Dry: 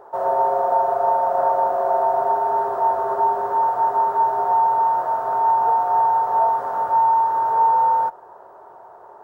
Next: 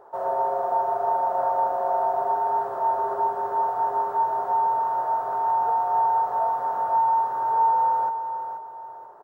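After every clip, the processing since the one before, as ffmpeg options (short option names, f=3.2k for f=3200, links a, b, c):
-af "aecho=1:1:482|964|1446|1928:0.355|0.114|0.0363|0.0116,volume=-5.5dB"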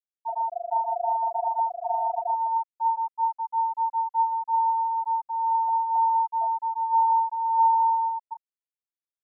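-af "afftfilt=real='re*gte(hypot(re,im),0.501)':imag='im*gte(hypot(re,im),0.501)':win_size=1024:overlap=0.75,volume=1dB"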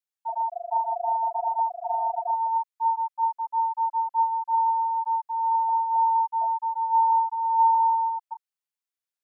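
-af "highpass=800,volume=2.5dB"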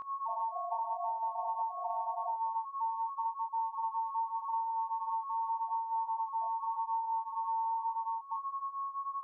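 -af "aeval=exprs='val(0)+0.0251*sin(2*PI*1100*n/s)':c=same,flanger=delay=19.5:depth=4:speed=0.85,acompressor=threshold=-32dB:ratio=10"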